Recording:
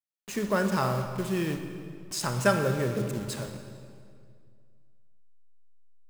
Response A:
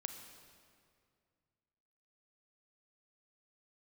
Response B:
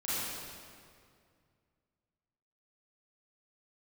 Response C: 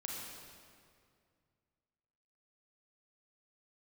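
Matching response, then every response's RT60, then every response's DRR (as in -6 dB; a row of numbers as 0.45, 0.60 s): A; 2.2, 2.2, 2.2 s; 6.5, -12.0, -2.5 dB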